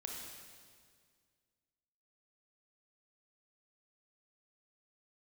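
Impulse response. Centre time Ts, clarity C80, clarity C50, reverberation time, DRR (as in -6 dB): 87 ms, 2.5 dB, 0.5 dB, 1.9 s, -1.0 dB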